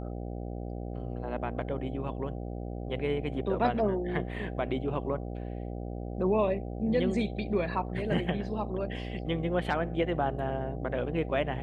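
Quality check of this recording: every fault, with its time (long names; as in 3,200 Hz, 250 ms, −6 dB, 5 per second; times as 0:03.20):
mains buzz 60 Hz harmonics 13 −37 dBFS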